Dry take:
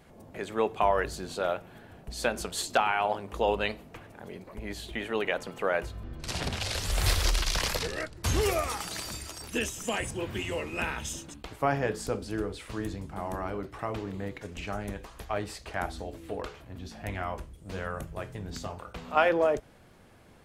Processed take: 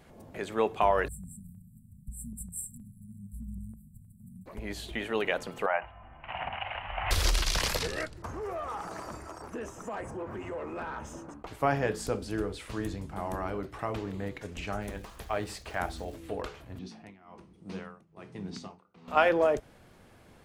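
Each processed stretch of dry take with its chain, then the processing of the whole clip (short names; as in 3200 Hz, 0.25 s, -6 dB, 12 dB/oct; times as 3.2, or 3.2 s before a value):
1.08–4.46 brick-wall FIR band-stop 240–7400 Hz + stepped notch 6.4 Hz 330–3200 Hz
5.66–7.11 rippled Chebyshev low-pass 3000 Hz, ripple 3 dB + resonant low shelf 570 Hz -10 dB, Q 3
8.22–11.47 EQ curve 1200 Hz 0 dB, 3600 Hz -24 dB, 5800 Hz -11 dB + compressor 5:1, threshold -35 dBFS + overdrive pedal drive 15 dB, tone 1800 Hz, clips at -27.5 dBFS
14.81–16.15 notches 50/100/150/200/250/300/350/400 Hz + crackle 570/s -48 dBFS
16.79–19.08 tremolo 1.2 Hz, depth 92% + speaker cabinet 170–8700 Hz, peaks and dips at 190 Hz +8 dB, 350 Hz +3 dB, 580 Hz -8 dB, 1600 Hz -6 dB, 3300 Hz -3 dB, 7300 Hz -9 dB + mismatched tape noise reduction decoder only
whole clip: dry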